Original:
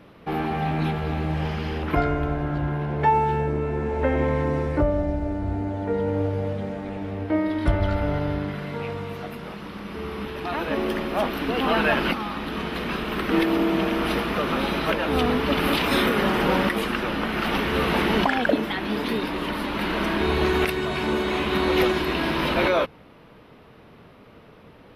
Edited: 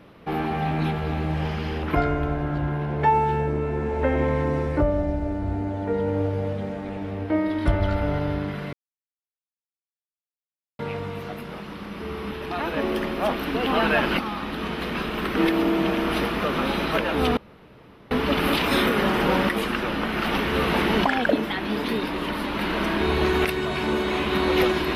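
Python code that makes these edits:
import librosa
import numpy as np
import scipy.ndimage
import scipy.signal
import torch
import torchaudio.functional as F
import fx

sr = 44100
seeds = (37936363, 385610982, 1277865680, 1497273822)

y = fx.edit(x, sr, fx.insert_silence(at_s=8.73, length_s=2.06),
    fx.insert_room_tone(at_s=15.31, length_s=0.74), tone=tone)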